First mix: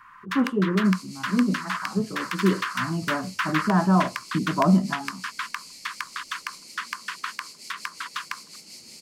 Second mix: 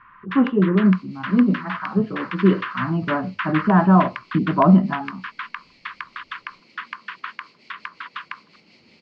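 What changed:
speech +5.5 dB
master: add low-pass filter 3,200 Hz 24 dB per octave

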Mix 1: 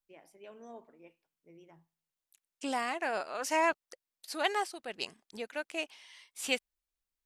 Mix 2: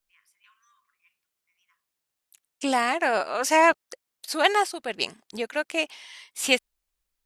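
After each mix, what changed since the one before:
first voice: add linear-phase brick-wall high-pass 1,000 Hz
second voice +10.0 dB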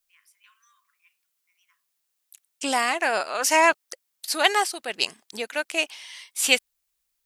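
master: add spectral tilt +2 dB per octave

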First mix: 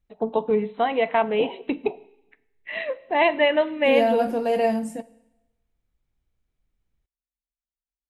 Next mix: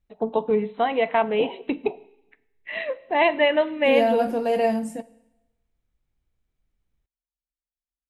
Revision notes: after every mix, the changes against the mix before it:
nothing changed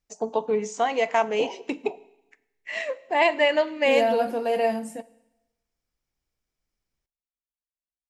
first voice: remove linear-phase brick-wall low-pass 4,100 Hz
background: send on
master: add low-shelf EQ 220 Hz −11.5 dB

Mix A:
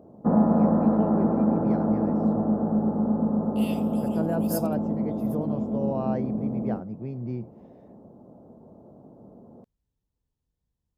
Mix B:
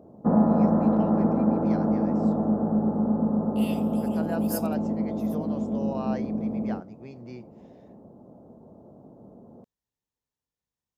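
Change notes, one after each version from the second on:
first voice: add spectral tilt +4.5 dB per octave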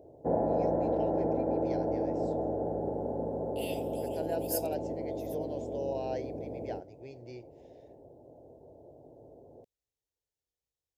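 master: add phaser with its sweep stopped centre 500 Hz, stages 4

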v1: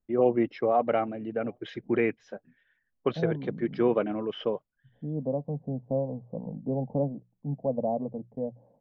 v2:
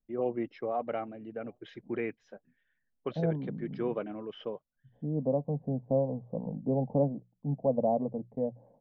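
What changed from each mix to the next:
first voice −8.5 dB
second voice: remove high-frequency loss of the air 390 metres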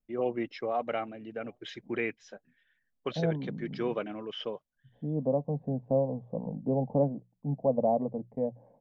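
master: remove low-pass filter 1,000 Hz 6 dB per octave

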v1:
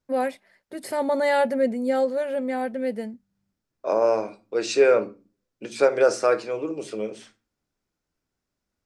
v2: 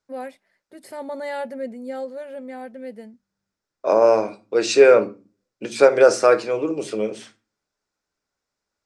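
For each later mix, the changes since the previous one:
first voice −8.0 dB
second voice +5.5 dB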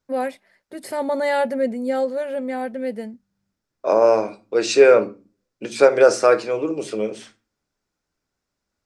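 first voice +8.5 dB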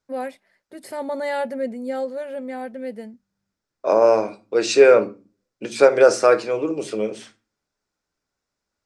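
first voice −4.5 dB

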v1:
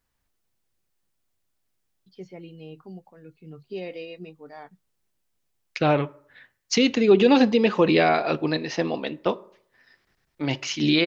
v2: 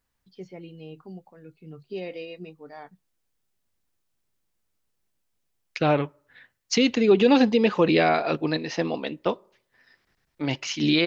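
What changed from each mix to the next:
first voice: entry −1.80 s
second voice: send −10.5 dB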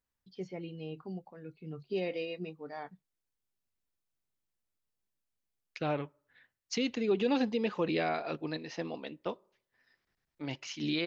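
second voice −11.5 dB

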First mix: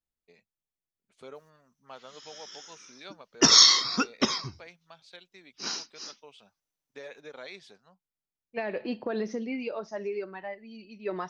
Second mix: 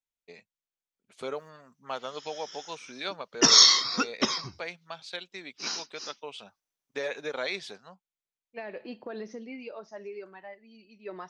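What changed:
first voice +11.5 dB
second voice −6.0 dB
master: add low-shelf EQ 240 Hz −5 dB

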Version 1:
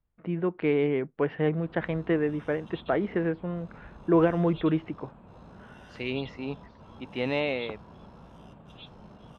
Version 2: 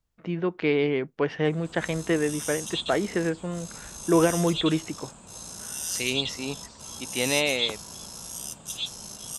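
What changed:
background: remove low-pass filter 1,800 Hz 6 dB per octave
master: remove high-frequency loss of the air 480 metres

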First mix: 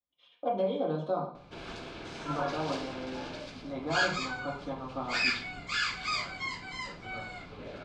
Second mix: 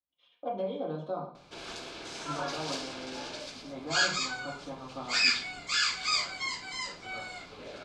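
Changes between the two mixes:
speech −4.0 dB
background: add bass and treble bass −8 dB, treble +11 dB

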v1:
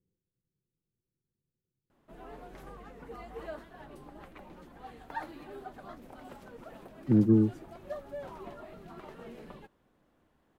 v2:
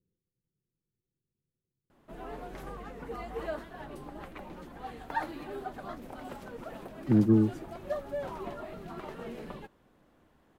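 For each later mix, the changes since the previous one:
background +5.5 dB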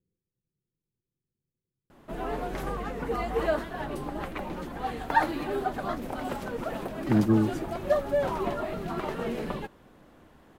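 background +9.5 dB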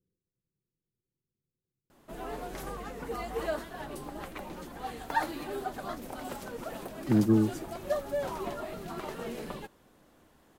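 background −6.0 dB
master: add bass and treble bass −2 dB, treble +9 dB

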